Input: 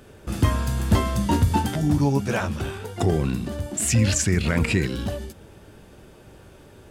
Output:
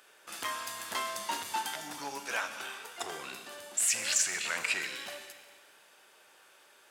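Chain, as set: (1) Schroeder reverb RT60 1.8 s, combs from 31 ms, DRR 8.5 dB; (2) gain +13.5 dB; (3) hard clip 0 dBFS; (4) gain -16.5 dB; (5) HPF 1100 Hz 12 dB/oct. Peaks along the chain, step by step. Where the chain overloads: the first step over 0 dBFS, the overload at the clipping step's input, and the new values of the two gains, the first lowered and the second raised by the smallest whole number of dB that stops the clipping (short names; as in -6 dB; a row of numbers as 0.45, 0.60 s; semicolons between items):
-7.0, +6.5, 0.0, -16.5, -15.5 dBFS; step 2, 6.5 dB; step 2 +6.5 dB, step 4 -9.5 dB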